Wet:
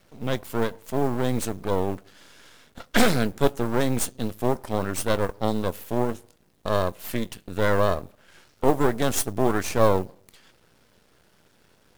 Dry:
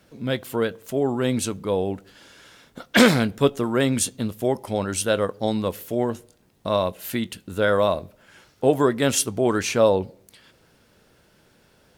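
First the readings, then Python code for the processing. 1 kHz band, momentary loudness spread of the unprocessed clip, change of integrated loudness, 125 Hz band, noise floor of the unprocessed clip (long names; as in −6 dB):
0.0 dB, 9 LU, −3.0 dB, −0.5 dB, −60 dBFS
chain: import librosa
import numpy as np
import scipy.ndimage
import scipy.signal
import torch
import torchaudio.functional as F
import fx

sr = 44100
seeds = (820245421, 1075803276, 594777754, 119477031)

y = fx.mod_noise(x, sr, seeds[0], snr_db=27)
y = np.maximum(y, 0.0)
y = fx.dynamic_eq(y, sr, hz=3200.0, q=0.78, threshold_db=-40.0, ratio=4.0, max_db=-5)
y = F.gain(torch.from_numpy(y), 2.0).numpy()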